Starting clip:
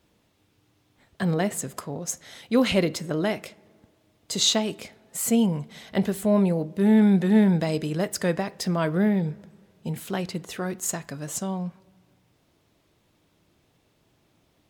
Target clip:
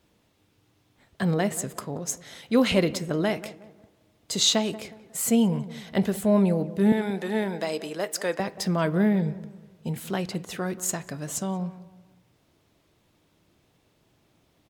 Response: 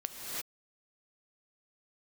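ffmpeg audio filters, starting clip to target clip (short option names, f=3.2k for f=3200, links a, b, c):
-filter_complex "[0:a]asettb=1/sr,asplit=3[a][b][c];[a]atrim=end=6.924[d];[b]atrim=start=6.92:end=8.4,asetpts=PTS-STARTPTS,afade=t=in:d=0.004:c=qsin,afade=t=out:st=1.476:d=0.004:c=qsin,highpass=410[e];[c]atrim=start=8.396[f];[d][e]acrossfade=d=0.004:c1=hsin:c2=qsin[g];[g][f]acrossfade=d=0.004:c1=qsin:c2=hsin,asplit=2[h][i];[i]adelay=182,lowpass=f=1.4k:p=1,volume=-15.5dB,asplit=2[j][k];[k]adelay=182,lowpass=f=1.4k:p=1,volume=0.38,asplit=2[l][m];[m]adelay=182,lowpass=f=1.4k:p=1,volume=0.38[n];[h][j][l][n]amix=inputs=4:normalize=0"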